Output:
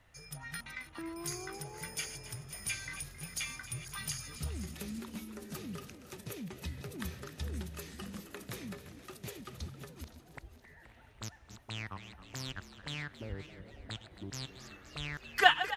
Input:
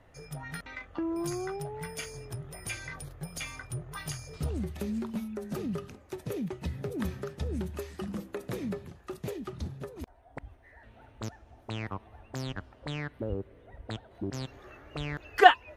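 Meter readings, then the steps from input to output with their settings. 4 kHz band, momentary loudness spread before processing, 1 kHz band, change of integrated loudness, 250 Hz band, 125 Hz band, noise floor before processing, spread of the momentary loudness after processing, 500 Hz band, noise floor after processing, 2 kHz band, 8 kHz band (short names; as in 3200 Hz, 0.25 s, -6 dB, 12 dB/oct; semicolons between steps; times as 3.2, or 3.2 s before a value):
+1.0 dB, 9 LU, -8.0 dB, -5.0 dB, -9.0 dB, -6.0 dB, -57 dBFS, 11 LU, -10.5 dB, -59 dBFS, -1.5 dB, +3.0 dB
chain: regenerating reverse delay 0.259 s, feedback 50%, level -12.5 dB; passive tone stack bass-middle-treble 5-5-5; frequency-shifting echo 0.268 s, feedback 57%, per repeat +87 Hz, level -15 dB; gain +8.5 dB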